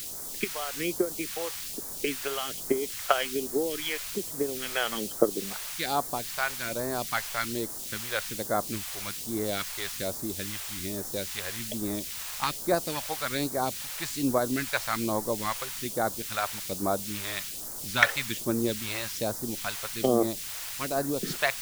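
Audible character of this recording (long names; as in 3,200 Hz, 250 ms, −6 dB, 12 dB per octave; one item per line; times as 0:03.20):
a quantiser's noise floor 6 bits, dither triangular
phaser sweep stages 2, 1.2 Hz, lowest notch 240–2,600 Hz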